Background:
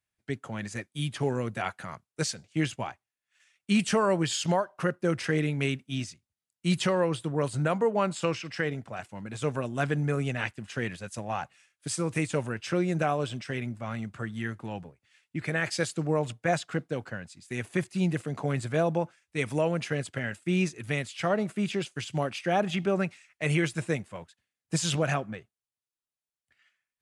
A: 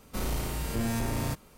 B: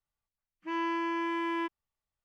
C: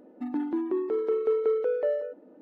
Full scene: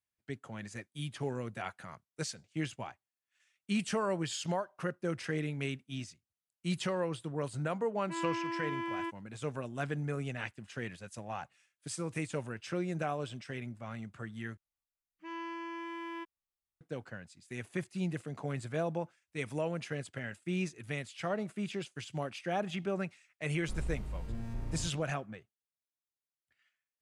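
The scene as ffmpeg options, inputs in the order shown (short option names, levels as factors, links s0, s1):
-filter_complex "[2:a]asplit=2[s0][s1];[0:a]volume=0.398[s2];[s1]highshelf=f=3600:g=4.5[s3];[1:a]aemphasis=mode=reproduction:type=bsi[s4];[s2]asplit=2[s5][s6];[s5]atrim=end=14.574[s7];[s3]atrim=end=2.24,asetpts=PTS-STARTPTS,volume=0.316[s8];[s6]atrim=start=16.806[s9];[s0]atrim=end=2.24,asetpts=PTS-STARTPTS,volume=0.562,afade=t=in:d=0.004:c=hsin,afade=t=out:st=2.236:d=0.004:c=hsin,adelay=7430[s10];[s4]atrim=end=1.57,asetpts=PTS-STARTPTS,volume=0.126,afade=t=in:d=0.004:c=hsin,afade=t=out:st=1.566:d=0.004:c=hsin,adelay=23540[s11];[s7][s8]acrossfade=d=0.004:c1=hsin:c2=hsin[s12];[s12][s9]acrossfade=d=0.004:c1=hsin:c2=hsin[s13];[s13][s10][s11]amix=inputs=3:normalize=0"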